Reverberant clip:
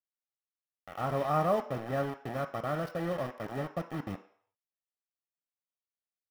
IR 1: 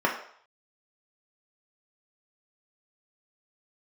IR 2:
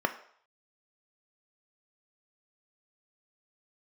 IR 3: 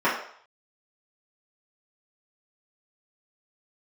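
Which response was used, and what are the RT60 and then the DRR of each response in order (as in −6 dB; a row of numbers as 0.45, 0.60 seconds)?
2; 0.60, 0.60, 0.60 seconds; −1.5, 7.0, −10.0 decibels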